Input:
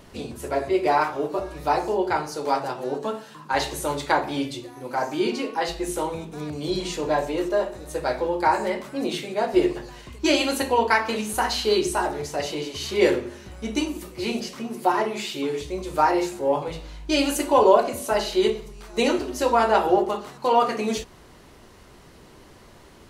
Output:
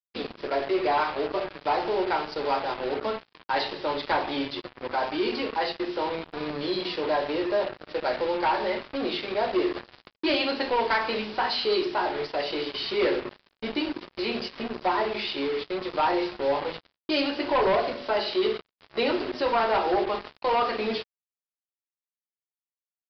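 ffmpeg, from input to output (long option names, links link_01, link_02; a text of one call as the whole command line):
ffmpeg -i in.wav -filter_complex "[0:a]highpass=290,asplit=2[link_01][link_02];[link_02]acompressor=threshold=-33dB:ratio=12,volume=-2.5dB[link_03];[link_01][link_03]amix=inputs=2:normalize=0,asoftclip=type=tanh:threshold=-17dB,acrusher=bits=4:mix=0:aa=0.5,aresample=11025,aresample=44100,volume=-1.5dB" out.wav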